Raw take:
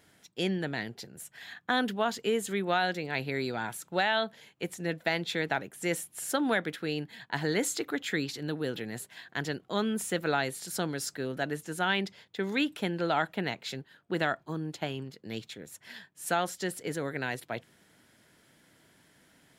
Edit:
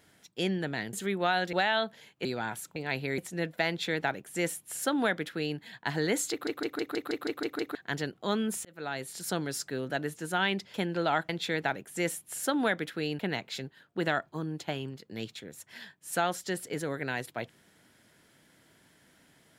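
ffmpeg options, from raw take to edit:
-filter_complex "[0:a]asplit=19[a][b][c][d][e][f][g][h][i][j][k][l][m][n][o][p][q][r][s];[a]atrim=end=0.932[t];[b]atrim=start=2.398:end=3.002[u];[c]atrim=start=3.928:end=4.652[v];[d]atrim=start=3.418:end=3.932[w];[e]atrim=start=2.998:end=3.422[x];[f]atrim=start=4.648:end=7.942[y];[g]atrim=start=7.778:end=7.942[z];[h]atrim=start=7.778:end=7.942[aa];[i]atrim=start=7.778:end=7.942[ab];[j]atrim=start=7.778:end=7.942[ac];[k]atrim=start=7.778:end=7.942[ad];[l]atrim=start=7.778:end=7.942[ae];[m]atrim=start=7.778:end=7.942[af];[n]atrim=start=7.778:end=7.942[ag];[o]atrim=start=9.218:end=10.12,asetpts=PTS-STARTPTS,afade=t=out:st=0.898:d=0.004:c=hsin[ah];[p]atrim=start=10.12:end=12.212,asetpts=PTS-STARTPTS,afade=t=in:d=0.58[ai];[q]atrim=start=12.778:end=13.332[aj];[r]atrim=start=5.148:end=7.052[ak];[s]atrim=start=13.328[al];[t][u]acrossfade=d=0.004:c1=hsin:c2=hsin[am];[am][v]acrossfade=d=0.004:c1=hsin:c2=hsin[an];[an][w]acrossfade=d=0.004:c1=hsin:c2=hsin[ao];[ao][x]acrossfade=d=0.004:c1=hsin:c2=hsin[ap];[ap][y]acrossfade=d=0.004:c1=hsin:c2=hsin[aq];[aq][z]acrossfade=d=0.004:c1=hsin:c2=hsin[ar];[ar][aa]acrossfade=d=0.004:c1=hsin:c2=hsin[as];[as][ab]acrossfade=d=0.004:c1=hsin:c2=hsin[at];[at][ac]acrossfade=d=0.004:c1=hsin:c2=hsin[au];[au][ad]acrossfade=d=0.004:c1=hsin:c2=hsin[av];[av][ae]acrossfade=d=0.004:c1=hsin:c2=hsin[aw];[aw][af]acrossfade=d=0.004:c1=hsin:c2=hsin[ax];[ax][ag]acrossfade=d=0.004:c1=hsin:c2=hsin[ay];[ah][ai]concat=n=2:v=0:a=1[az];[ay][az]acrossfade=d=0.004:c1=hsin:c2=hsin[ba];[ba][aj]acrossfade=d=0.004:c1=hsin:c2=hsin[bb];[bb][ak]acrossfade=d=0.004:c1=hsin:c2=hsin[bc];[bc][al]acrossfade=d=0.004:c1=hsin:c2=hsin"

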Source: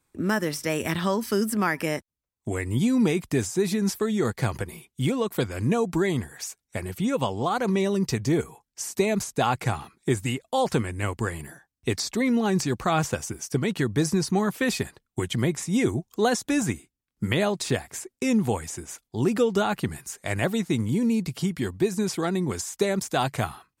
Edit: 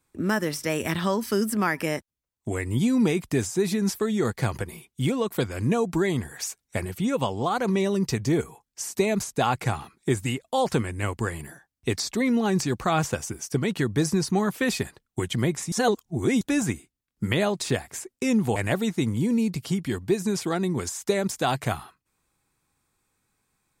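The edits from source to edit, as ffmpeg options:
-filter_complex "[0:a]asplit=6[a][b][c][d][e][f];[a]atrim=end=6.252[g];[b]atrim=start=6.248:end=6.852,asetpts=PTS-STARTPTS,volume=3dB[h];[c]atrim=start=6.848:end=15.722[i];[d]atrim=start=15.718:end=16.412,asetpts=PTS-STARTPTS,areverse[j];[e]atrim=start=16.408:end=18.562[k];[f]atrim=start=20.278[l];[g][h]acrossfade=d=0.004:c1=hsin:c2=hsin[m];[m][i]acrossfade=d=0.004:c1=hsin:c2=hsin[n];[n][j]acrossfade=d=0.004:c1=hsin:c2=hsin[o];[o][k]acrossfade=d=0.004:c1=hsin:c2=hsin[p];[p][l]acrossfade=d=0.004:c1=hsin:c2=hsin"

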